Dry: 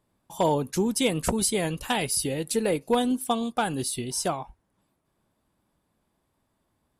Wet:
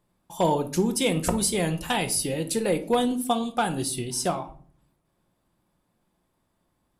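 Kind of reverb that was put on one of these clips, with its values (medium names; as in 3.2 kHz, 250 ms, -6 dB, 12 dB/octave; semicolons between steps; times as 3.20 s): simulated room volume 450 m³, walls furnished, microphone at 0.88 m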